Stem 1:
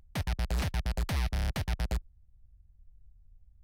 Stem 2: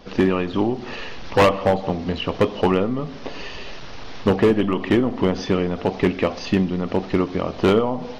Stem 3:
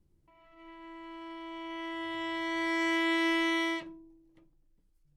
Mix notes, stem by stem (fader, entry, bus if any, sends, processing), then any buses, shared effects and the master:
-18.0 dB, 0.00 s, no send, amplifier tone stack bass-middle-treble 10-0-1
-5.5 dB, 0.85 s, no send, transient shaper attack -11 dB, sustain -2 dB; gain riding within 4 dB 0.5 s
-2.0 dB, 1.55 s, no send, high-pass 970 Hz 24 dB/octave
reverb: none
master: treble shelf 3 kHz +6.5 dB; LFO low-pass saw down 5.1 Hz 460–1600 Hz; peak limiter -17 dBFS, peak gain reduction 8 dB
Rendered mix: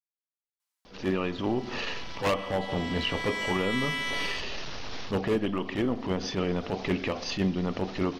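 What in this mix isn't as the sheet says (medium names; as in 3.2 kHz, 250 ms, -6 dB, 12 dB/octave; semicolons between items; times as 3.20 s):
stem 1: muted; stem 3: entry 1.55 s -> 0.60 s; master: missing LFO low-pass saw down 5.1 Hz 460–1600 Hz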